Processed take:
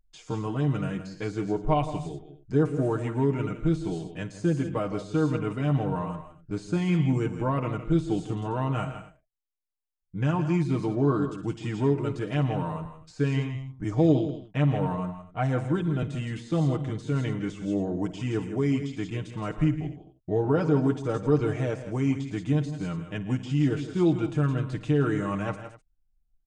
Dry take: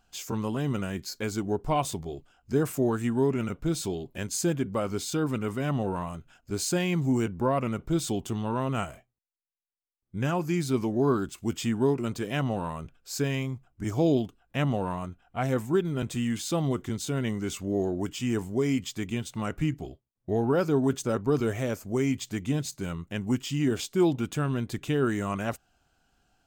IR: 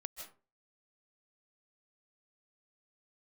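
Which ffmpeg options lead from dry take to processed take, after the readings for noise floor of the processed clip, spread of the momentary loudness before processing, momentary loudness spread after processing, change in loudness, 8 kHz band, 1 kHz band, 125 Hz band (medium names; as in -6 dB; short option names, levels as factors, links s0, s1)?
-69 dBFS, 9 LU, 9 LU, +1.5 dB, under -10 dB, 0.0 dB, +4.0 dB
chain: -af "anlmdn=0.0158,aecho=1:1:55|110|161|182|251:0.126|0.126|0.266|0.126|0.1,deesser=0.95,lowshelf=f=82:g=5.5,aecho=1:1:6.5:0.75,aresample=22050,aresample=44100,highshelf=f=5200:g=-12,volume=0.841"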